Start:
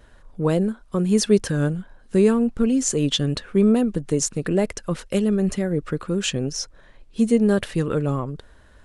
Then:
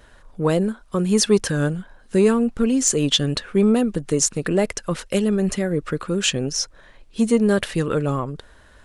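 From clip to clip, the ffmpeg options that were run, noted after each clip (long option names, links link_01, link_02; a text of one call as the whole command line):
ffmpeg -i in.wav -af "acontrast=25,lowshelf=frequency=500:gain=-5.5" out.wav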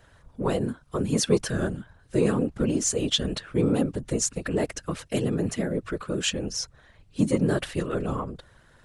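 ffmpeg -i in.wav -af "afftfilt=real='hypot(re,im)*cos(2*PI*random(0))':imag='hypot(re,im)*sin(2*PI*random(1))':win_size=512:overlap=0.75" out.wav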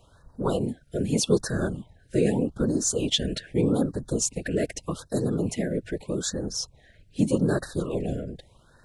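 ffmpeg -i in.wav -af "afftfilt=real='re*(1-between(b*sr/1024,970*pow(2700/970,0.5+0.5*sin(2*PI*0.82*pts/sr))/1.41,970*pow(2700/970,0.5+0.5*sin(2*PI*0.82*pts/sr))*1.41))':imag='im*(1-between(b*sr/1024,970*pow(2700/970,0.5+0.5*sin(2*PI*0.82*pts/sr))/1.41,970*pow(2700/970,0.5+0.5*sin(2*PI*0.82*pts/sr))*1.41))':win_size=1024:overlap=0.75" out.wav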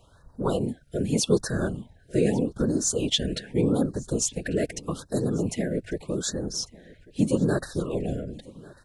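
ffmpeg -i in.wav -af "aecho=1:1:1145:0.075" out.wav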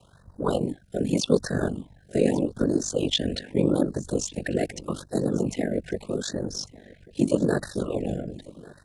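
ffmpeg -i in.wav -filter_complex "[0:a]afreqshift=33,acrossover=split=5700[link_01][link_02];[link_02]acompressor=threshold=-41dB:ratio=4:attack=1:release=60[link_03];[link_01][link_03]amix=inputs=2:normalize=0,aeval=exprs='val(0)*sin(2*PI*24*n/s)':channel_layout=same,volume=3.5dB" out.wav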